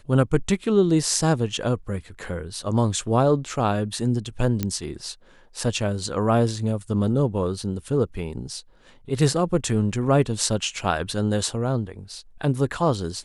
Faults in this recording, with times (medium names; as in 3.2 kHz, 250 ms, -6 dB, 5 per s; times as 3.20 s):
4.63 s: pop -10 dBFS